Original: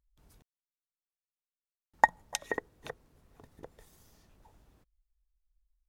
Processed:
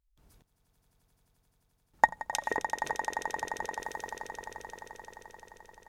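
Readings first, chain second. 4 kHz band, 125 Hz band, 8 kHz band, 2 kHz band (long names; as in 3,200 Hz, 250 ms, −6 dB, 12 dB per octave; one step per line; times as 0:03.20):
+2.5 dB, +2.0 dB, +2.5 dB, +2.5 dB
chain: on a send: echo that builds up and dies away 87 ms, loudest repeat 8, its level −12.5 dB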